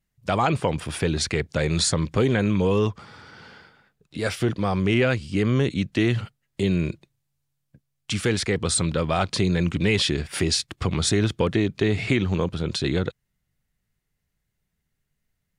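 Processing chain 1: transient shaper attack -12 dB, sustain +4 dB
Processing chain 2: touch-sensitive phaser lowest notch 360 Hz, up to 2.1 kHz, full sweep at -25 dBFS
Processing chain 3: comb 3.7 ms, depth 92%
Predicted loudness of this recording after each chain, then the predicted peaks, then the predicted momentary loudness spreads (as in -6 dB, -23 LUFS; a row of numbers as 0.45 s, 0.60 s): -25.0 LUFS, -24.5 LUFS, -22.0 LUFS; -9.5 dBFS, -9.0 dBFS, -6.5 dBFS; 9 LU, 6 LU, 7 LU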